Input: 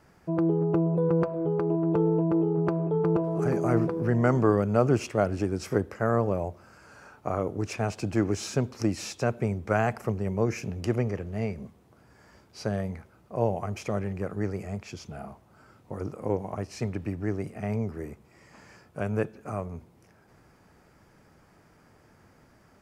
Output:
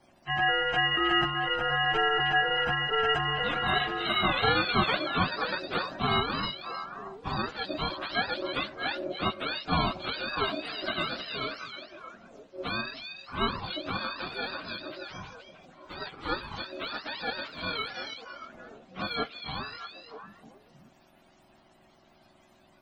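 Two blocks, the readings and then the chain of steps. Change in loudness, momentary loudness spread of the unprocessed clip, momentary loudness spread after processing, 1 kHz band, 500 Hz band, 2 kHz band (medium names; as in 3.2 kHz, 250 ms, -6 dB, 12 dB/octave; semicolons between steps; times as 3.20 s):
-1.0 dB, 13 LU, 17 LU, +5.5 dB, -7.0 dB, +11.0 dB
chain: spectrum inverted on a logarithmic axis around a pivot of 630 Hz; ring modulator 460 Hz; repeats whose band climbs or falls 314 ms, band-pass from 3.3 kHz, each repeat -1.4 oct, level -4 dB; trim +2.5 dB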